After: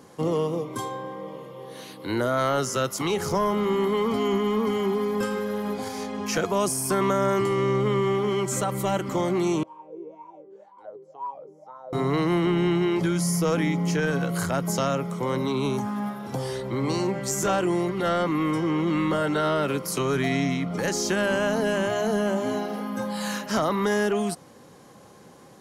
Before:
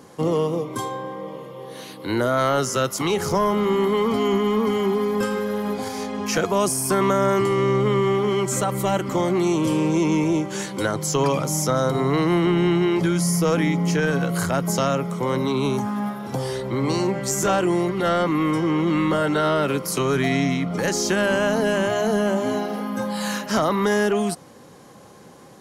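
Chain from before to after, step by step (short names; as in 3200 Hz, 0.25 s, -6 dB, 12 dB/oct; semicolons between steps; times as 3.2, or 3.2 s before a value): 9.63–11.93 wah 2 Hz 400–1000 Hz, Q 17; gain -3.5 dB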